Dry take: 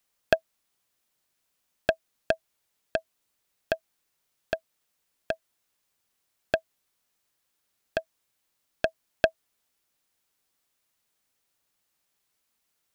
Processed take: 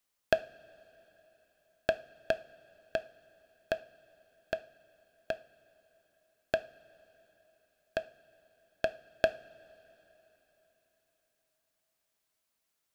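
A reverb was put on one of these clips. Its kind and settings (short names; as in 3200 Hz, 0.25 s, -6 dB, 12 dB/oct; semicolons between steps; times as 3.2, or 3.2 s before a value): two-slope reverb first 0.4 s, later 4.1 s, from -18 dB, DRR 11.5 dB; gain -5 dB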